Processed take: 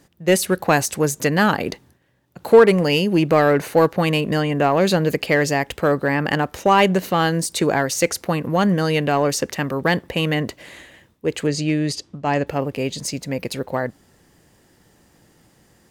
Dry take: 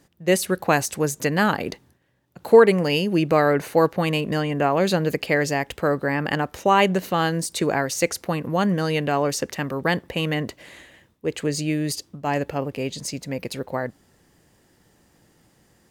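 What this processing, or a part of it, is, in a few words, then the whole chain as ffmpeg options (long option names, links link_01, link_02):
parallel distortion: -filter_complex "[0:a]asettb=1/sr,asplit=3[link_01][link_02][link_03];[link_01]atrim=end=11.474[link_04];[link_02]atrim=start=11.47:end=12.47,asetpts=PTS-STARTPTS,afade=type=in:duration=0.004:curve=qsin,afade=type=out:start_time=0.996:duration=0.004:curve=qsin,lowpass=6400[link_05];[link_03]atrim=start=12.466[link_06];[link_04][link_05]acrossfade=duration=0.004:curve1=hsin:curve2=qsin[link_07];[link_07][link_06]acrossfade=duration=0.004:curve1=qsin:curve2=hsin,asplit=2[link_08][link_09];[link_09]asoftclip=type=hard:threshold=-16dB,volume=-5.5dB[link_10];[link_08][link_10]amix=inputs=2:normalize=0"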